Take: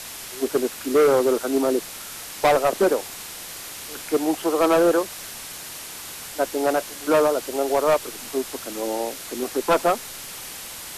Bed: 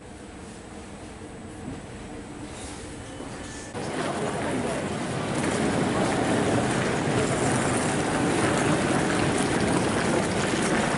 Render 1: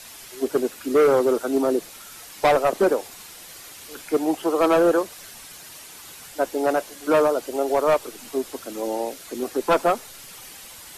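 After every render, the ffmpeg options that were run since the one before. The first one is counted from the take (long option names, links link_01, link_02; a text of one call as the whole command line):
ffmpeg -i in.wav -af "afftdn=noise_reduction=8:noise_floor=-37" out.wav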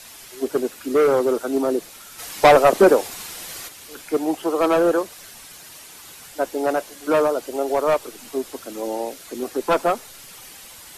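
ffmpeg -i in.wav -filter_complex "[0:a]asplit=3[link_01][link_02][link_03];[link_01]afade=type=out:start_time=2.18:duration=0.02[link_04];[link_02]acontrast=86,afade=type=in:start_time=2.18:duration=0.02,afade=type=out:start_time=3.67:duration=0.02[link_05];[link_03]afade=type=in:start_time=3.67:duration=0.02[link_06];[link_04][link_05][link_06]amix=inputs=3:normalize=0" out.wav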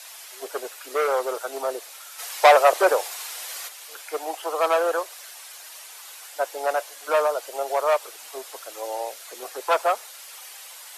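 ffmpeg -i in.wav -af "highpass=frequency=560:width=0.5412,highpass=frequency=560:width=1.3066" out.wav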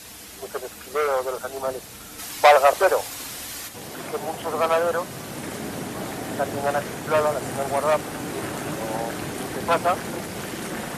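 ffmpeg -i in.wav -i bed.wav -filter_complex "[1:a]volume=-7.5dB[link_01];[0:a][link_01]amix=inputs=2:normalize=0" out.wav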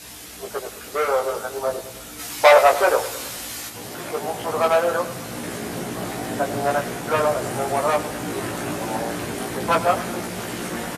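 ffmpeg -i in.wav -filter_complex "[0:a]asplit=2[link_01][link_02];[link_02]adelay=17,volume=-2.5dB[link_03];[link_01][link_03]amix=inputs=2:normalize=0,aecho=1:1:104|208|312|416|520:0.2|0.106|0.056|0.0297|0.0157" out.wav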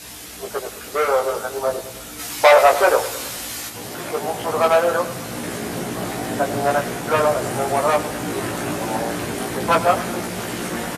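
ffmpeg -i in.wav -af "volume=2.5dB,alimiter=limit=-2dB:level=0:latency=1" out.wav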